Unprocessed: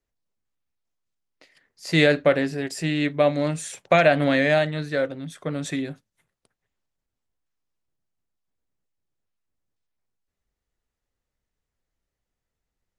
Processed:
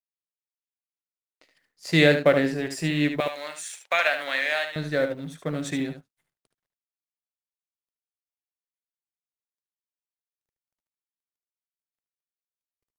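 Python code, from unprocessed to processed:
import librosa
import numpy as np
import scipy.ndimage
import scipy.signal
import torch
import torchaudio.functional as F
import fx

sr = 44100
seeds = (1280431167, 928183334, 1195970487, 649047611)

p1 = fx.law_mismatch(x, sr, coded='A')
p2 = fx.highpass(p1, sr, hz=1100.0, slope=12, at=(3.2, 4.76))
y = p2 + fx.echo_single(p2, sr, ms=74, db=-8.5, dry=0)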